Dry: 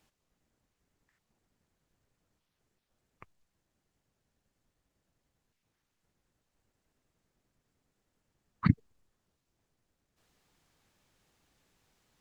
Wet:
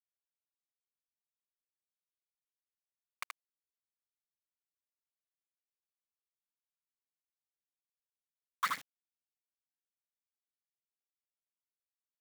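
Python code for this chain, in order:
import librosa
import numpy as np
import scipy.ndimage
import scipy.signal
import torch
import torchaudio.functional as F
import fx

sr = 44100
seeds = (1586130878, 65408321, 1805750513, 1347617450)

p1 = fx.over_compress(x, sr, threshold_db=-34.0, ratio=-1.0)
p2 = x + (p1 * 10.0 ** (3.0 / 20.0))
p3 = np.where(np.abs(p2) >= 10.0 ** (-37.0 / 20.0), p2, 0.0)
p4 = fx.power_curve(p3, sr, exponent=0.7)
p5 = scipy.signal.sosfilt(scipy.signal.bessel(2, 2000.0, 'highpass', norm='mag', fs=sr, output='sos'), p4)
p6 = p5 + fx.echo_single(p5, sr, ms=77, db=-4.0, dry=0)
y = p6 * 10.0 ** (-1.5 / 20.0)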